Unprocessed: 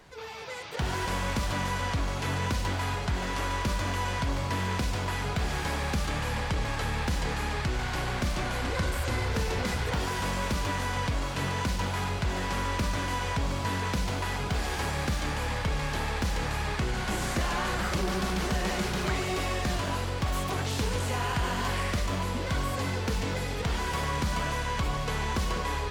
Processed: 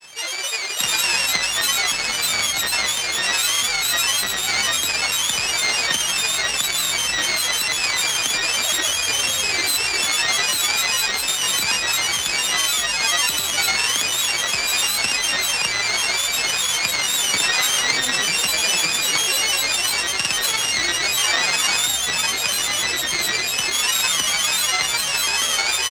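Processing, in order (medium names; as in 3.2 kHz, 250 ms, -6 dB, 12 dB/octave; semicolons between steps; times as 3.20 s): sorted samples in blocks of 16 samples; frequency weighting ITU-R 468; in parallel at -2.5 dB: peak limiter -19 dBFS, peak gain reduction 11 dB; on the sum: granulator, pitch spread up and down by 7 st; trim +5 dB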